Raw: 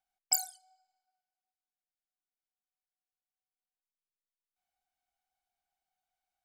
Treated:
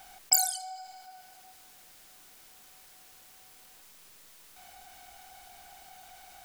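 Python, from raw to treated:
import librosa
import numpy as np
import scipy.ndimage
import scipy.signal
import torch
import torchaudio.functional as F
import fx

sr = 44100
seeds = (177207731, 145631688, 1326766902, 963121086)

y = fx.env_flatten(x, sr, amount_pct=50)
y = F.gain(torch.from_numpy(y), 4.5).numpy()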